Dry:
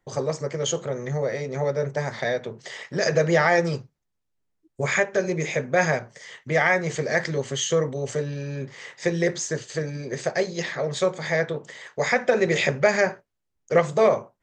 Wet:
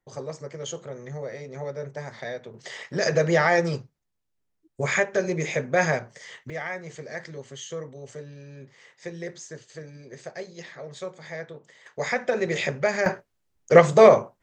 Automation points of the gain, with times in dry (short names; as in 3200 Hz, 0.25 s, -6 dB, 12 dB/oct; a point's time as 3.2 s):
-8.5 dB
from 2.54 s -1 dB
from 6.5 s -12.5 dB
from 11.86 s -4.5 dB
from 13.06 s +5.5 dB